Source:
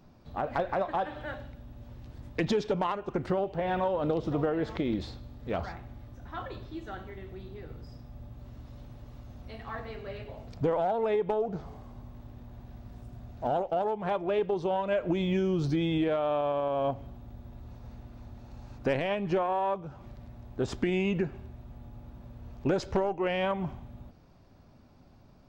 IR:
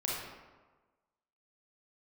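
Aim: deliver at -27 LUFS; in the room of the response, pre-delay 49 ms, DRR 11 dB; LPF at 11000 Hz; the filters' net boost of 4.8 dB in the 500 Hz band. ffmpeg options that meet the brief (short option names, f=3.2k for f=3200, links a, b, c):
-filter_complex "[0:a]lowpass=11k,equalizer=f=500:t=o:g=6,asplit=2[a][b];[1:a]atrim=start_sample=2205,adelay=49[c];[b][c]afir=irnorm=-1:irlink=0,volume=-16dB[d];[a][d]amix=inputs=2:normalize=0"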